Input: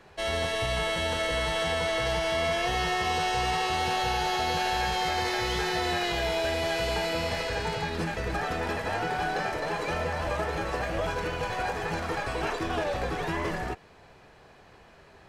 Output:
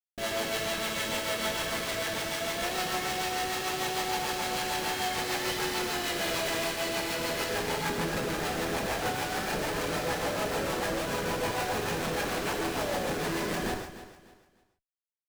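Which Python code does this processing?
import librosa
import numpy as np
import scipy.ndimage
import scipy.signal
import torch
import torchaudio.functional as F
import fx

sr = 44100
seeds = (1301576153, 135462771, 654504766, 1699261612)

y = scipy.signal.sosfilt(scipy.signal.butter(4, 160.0, 'highpass', fs=sr, output='sos'), x)
y = fx.high_shelf(y, sr, hz=2200.0, db=7.5)
y = fx.schmitt(y, sr, flips_db=-32.5)
y = fx.rotary(y, sr, hz=6.7)
y = fx.echo_feedback(y, sr, ms=298, feedback_pct=29, wet_db=-14)
y = fx.rev_gated(y, sr, seeds[0], gate_ms=170, shape='flat', drr_db=3.0)
y = fx.env_flatten(y, sr, amount_pct=100, at=(6.23, 6.67))
y = y * 10.0 ** (-2.5 / 20.0)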